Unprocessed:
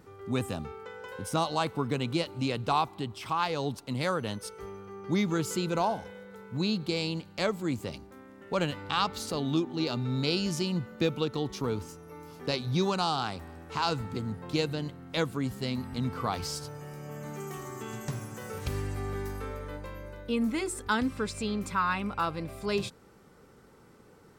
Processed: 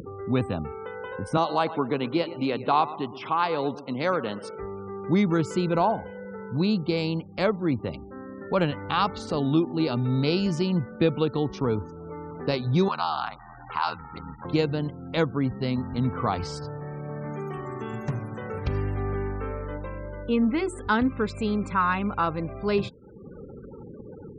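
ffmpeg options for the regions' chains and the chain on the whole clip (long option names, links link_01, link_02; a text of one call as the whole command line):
ffmpeg -i in.wav -filter_complex "[0:a]asettb=1/sr,asplit=3[link_01][link_02][link_03];[link_01]atrim=end=1.374[link_04];[link_02]atrim=start=1.37:end=4.56,asetpts=PTS-STARTPTS,afade=type=in:duration=0.004:curve=qsin,afade=type=out:start_time=3.186:duration=0.004:curve=qsin,highpass=220,aecho=1:1:117|234|351|468:0.178|0.0836|0.0393|0.0185,atrim=end_sample=140679[link_05];[link_03]atrim=start=4.556[link_06];[link_04][link_05]acrossfade=duration=0.004:curve1=hsin:curve2=qsin[link_07];[link_07][link_06]acrossfade=duration=0.004:curve1=qsin:curve2=hsin,asettb=1/sr,asplit=3[link_08][link_09][link_10];[link_08]atrim=end=12.884[link_11];[link_09]atrim=start=12.88:end=14.45,asetpts=PTS-STARTPTS,afade=type=in:duration=0.004:curve=qsin,afade=type=out:start_time=1.566:duration=0.004:curve=qsin,lowshelf=frequency=660:width_type=q:width=1.5:gain=-11.5,aeval=exprs='val(0)*sin(2*PI*40*n/s)':channel_layout=same[link_12];[link_10]atrim=start=14.446[link_13];[link_11][link_12]acrossfade=duration=0.004:curve1=hsin:curve2=qsin[link_14];[link_14][link_13]acrossfade=duration=0.004:curve1=qsin:curve2=hsin,lowpass=frequency=1900:poles=1,afftfilt=real='re*gte(hypot(re,im),0.00316)':imag='im*gte(hypot(re,im),0.00316)':win_size=1024:overlap=0.75,acompressor=mode=upward:threshold=-37dB:ratio=2.5,volume=6dB" out.wav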